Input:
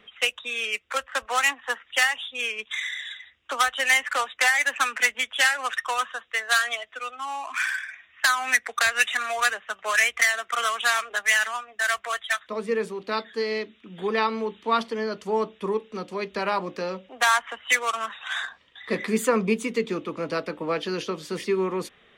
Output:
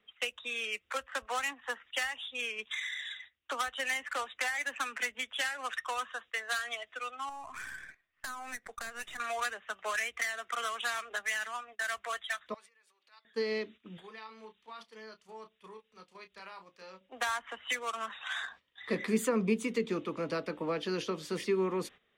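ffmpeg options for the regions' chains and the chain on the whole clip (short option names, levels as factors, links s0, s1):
-filter_complex "[0:a]asettb=1/sr,asplit=3[s0][s1][s2];[s0]atrim=end=7.294[s3];[s1]atrim=start=7.29:end=9.2,asetpts=PTS-STARTPTS,afade=t=in:d=0.004:c=qsin,afade=t=out:st=1.906:d=0.004:c=qsin,aeval=exprs='if(lt(val(0),0),0.708*val(0),val(0))':c=same,equalizer=f=2800:w=0.72:g=-10,acompressor=threshold=0.0126:ratio=2:attack=3.2:release=140:knee=1:detection=peak[s4];[s2]atrim=start=9.196[s5];[s3][s4]acrossfade=d=0.004:c1=hsin:c2=qsin[s6];[s6][s5]acrossfade=d=0.004:c1=qsin:c2=hsin,asettb=1/sr,asplit=3[s7][s8][s9];[s7]atrim=end=12.544[s10];[s8]atrim=start=12.54:end=13.25,asetpts=PTS-STARTPTS,afade=t=in:d=0.004:c=qsin,afade=t=out:st=0.706:d=0.004:c=qsin,aecho=1:1:3.5:0.43,atrim=end_sample=31311,acompressor=threshold=0.0126:ratio=20:attack=3.2:release=140:knee=1:detection=peak,highpass=1300[s11];[s9]atrim=start=13.246[s12];[s10][s11]acrossfade=d=0.004:c1=hsin:c2=qsin[s13];[s13][s12]acrossfade=d=0.004:c1=qsin:c2=hsin,asettb=1/sr,asplit=3[s14][s15][s16];[s14]atrim=end=13.974[s17];[s15]atrim=start=13.97:end=17.01,asetpts=PTS-STARTPTS,afade=t=in:d=0.004:c=qsin,afade=t=out:st=3.036:d=0.004:c=qsin,equalizer=f=260:w=0.42:g=-12.5,acompressor=threshold=0.00562:ratio=3:attack=3.2:release=140:knee=1:detection=peak,asplit=2[s18][s19];[s19]adelay=32,volume=0.398[s20];[s18][s20]amix=inputs=2:normalize=0,atrim=end_sample=134064[s21];[s16]atrim=start=17.006[s22];[s17][s21]acrossfade=d=0.004:c1=hsin:c2=qsin[s23];[s23][s22]acrossfade=d=0.004:c1=qsin:c2=hsin,agate=range=0.224:threshold=0.00562:ratio=16:detection=peak,acrossover=split=410[s24][s25];[s25]acompressor=threshold=0.0316:ratio=2.5[s26];[s24][s26]amix=inputs=2:normalize=0,volume=0.596"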